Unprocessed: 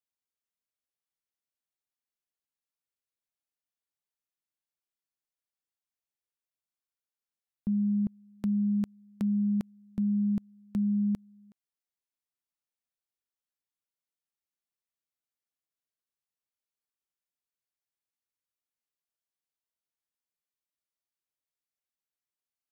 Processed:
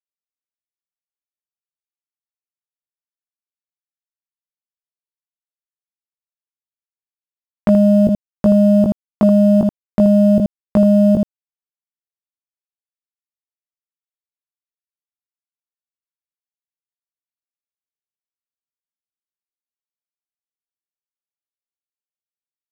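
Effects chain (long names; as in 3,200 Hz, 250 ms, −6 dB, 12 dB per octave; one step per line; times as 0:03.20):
Butterworth low-pass 720 Hz 72 dB per octave
downward expander −49 dBFS
low-shelf EQ 460 Hz −6.5 dB
power curve on the samples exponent 3
centre clipping without the shift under −57.5 dBFS
ambience of single reflections 18 ms −3 dB, 79 ms −8.5 dB
boost into a limiter +35.5 dB
one half of a high-frequency compander encoder only
level −4.5 dB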